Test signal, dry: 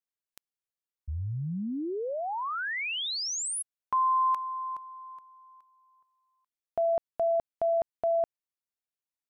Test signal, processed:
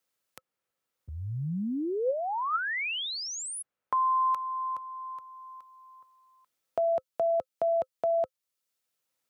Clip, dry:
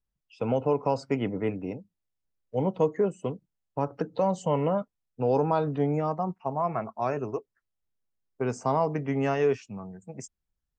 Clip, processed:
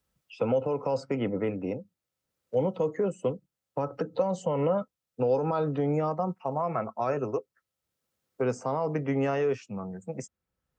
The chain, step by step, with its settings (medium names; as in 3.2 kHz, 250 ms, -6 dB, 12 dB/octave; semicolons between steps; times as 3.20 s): high-pass 80 Hz; peak limiter -19.5 dBFS; small resonant body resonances 520/1300 Hz, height 9 dB, ringing for 60 ms; three bands compressed up and down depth 40%